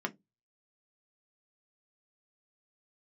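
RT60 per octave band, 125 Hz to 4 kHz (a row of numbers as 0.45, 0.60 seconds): 0.30, 0.30, 0.20, 0.15, 0.15, 0.10 seconds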